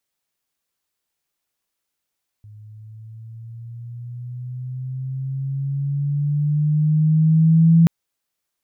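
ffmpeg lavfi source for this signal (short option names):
-f lavfi -i "aevalsrc='pow(10,(-8.5+30.5*(t/5.43-1))/20)*sin(2*PI*105*5.43/(8*log(2)/12)*(exp(8*log(2)/12*t/5.43)-1))':d=5.43:s=44100"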